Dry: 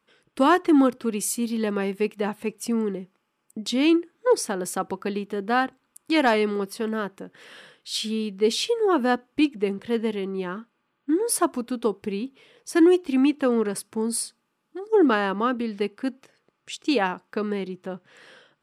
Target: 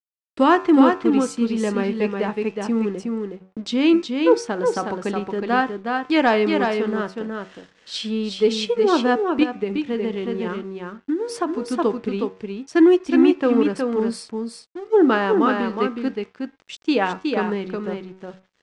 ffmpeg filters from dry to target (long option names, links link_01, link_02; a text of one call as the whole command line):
ffmpeg -i in.wav -filter_complex "[0:a]agate=range=-8dB:threshold=-50dB:ratio=16:detection=peak,highshelf=frequency=5400:gain=-10,bandreject=frequency=93.94:width_type=h:width=4,bandreject=frequency=187.88:width_type=h:width=4,bandreject=frequency=281.82:width_type=h:width=4,bandreject=frequency=375.76:width_type=h:width=4,bandreject=frequency=469.7:width_type=h:width=4,bandreject=frequency=563.64:width_type=h:width=4,bandreject=frequency=657.58:width_type=h:width=4,bandreject=frequency=751.52:width_type=h:width=4,bandreject=frequency=845.46:width_type=h:width=4,bandreject=frequency=939.4:width_type=h:width=4,bandreject=frequency=1033.34:width_type=h:width=4,bandreject=frequency=1127.28:width_type=h:width=4,bandreject=frequency=1221.22:width_type=h:width=4,bandreject=frequency=1315.16:width_type=h:width=4,bandreject=frequency=1409.1:width_type=h:width=4,bandreject=frequency=1503.04:width_type=h:width=4,bandreject=frequency=1596.98:width_type=h:width=4,bandreject=frequency=1690.92:width_type=h:width=4,bandreject=frequency=1784.86:width_type=h:width=4,bandreject=frequency=1878.8:width_type=h:width=4,bandreject=frequency=1972.74:width_type=h:width=4,bandreject=frequency=2066.68:width_type=h:width=4,bandreject=frequency=2160.62:width_type=h:width=4,bandreject=frequency=2254.56:width_type=h:width=4,bandreject=frequency=2348.5:width_type=h:width=4,bandreject=frequency=2442.44:width_type=h:width=4,bandreject=frequency=2536.38:width_type=h:width=4,bandreject=frequency=2630.32:width_type=h:width=4,bandreject=frequency=2724.26:width_type=h:width=4,aeval=exprs='sgn(val(0))*max(abs(val(0))-0.00282,0)':channel_layout=same,lowpass=frequency=7700:width=0.5412,lowpass=frequency=7700:width=1.3066,aecho=1:1:366:0.596,asettb=1/sr,asplit=3[link_01][link_02][link_03];[link_01]atrim=end=9.434[link_04];[link_02]atrim=start=9.43:end=11.62,asetpts=PTS-STARTPTS,afade=type=in:duration=0.004:curve=qsin,afade=type=out:start_time=2.186:duration=0.004:curve=qsin,acompressor=threshold=-23dB:ratio=6[link_05];[link_03]atrim=start=11.616[link_06];[link_04][link_05]acrossfade=duration=0.004:curve1=hsin:curve2=qsin[link_07];[link_07][link_06]acrossfade=duration=0.004:curve1=qsin:curve2=hsin,volume=3.5dB" out.wav